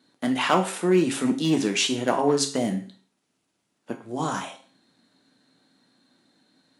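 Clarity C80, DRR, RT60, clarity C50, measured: 16.0 dB, 4.0 dB, 0.40 s, 11.0 dB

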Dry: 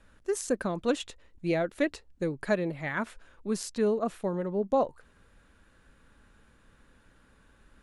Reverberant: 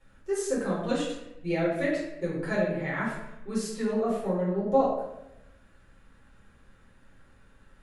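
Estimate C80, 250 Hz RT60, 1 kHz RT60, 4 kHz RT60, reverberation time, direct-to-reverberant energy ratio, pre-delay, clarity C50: 4.5 dB, 1.0 s, 0.80 s, 0.60 s, 0.85 s, −8.5 dB, 6 ms, 1.5 dB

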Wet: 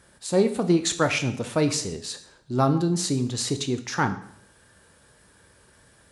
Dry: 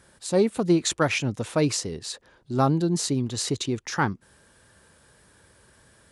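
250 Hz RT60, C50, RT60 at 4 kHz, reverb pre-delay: 0.65 s, 12.0 dB, 0.60 s, 4 ms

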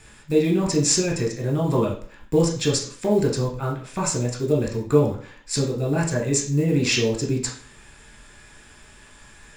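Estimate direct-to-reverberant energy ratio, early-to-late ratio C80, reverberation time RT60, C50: −1.0 dB, 12.0 dB, 0.50 s, 7.0 dB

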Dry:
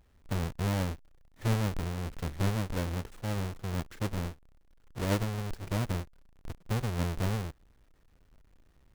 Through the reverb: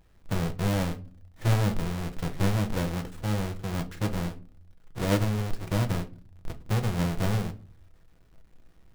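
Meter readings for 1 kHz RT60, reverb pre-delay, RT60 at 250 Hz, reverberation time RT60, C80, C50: 0.35 s, 6 ms, 0.60 s, 0.40 s, 22.5 dB, 17.0 dB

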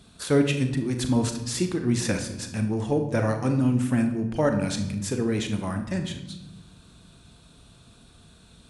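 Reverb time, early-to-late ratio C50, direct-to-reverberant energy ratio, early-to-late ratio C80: 1.0 s, 9.0 dB, 6.0 dB, 11.5 dB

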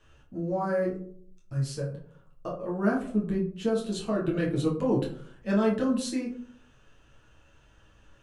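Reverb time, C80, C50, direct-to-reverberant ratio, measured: 0.55 s, 12.0 dB, 7.0 dB, −4.0 dB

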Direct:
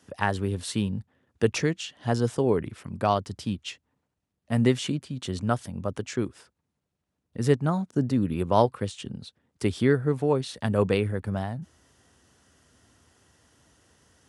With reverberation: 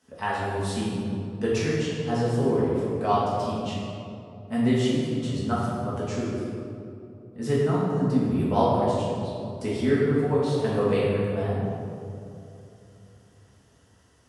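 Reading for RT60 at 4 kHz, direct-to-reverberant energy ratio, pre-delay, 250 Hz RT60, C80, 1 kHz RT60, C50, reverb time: 1.4 s, −9.0 dB, 5 ms, 3.4 s, 0.0 dB, 2.6 s, −2.0 dB, 3.0 s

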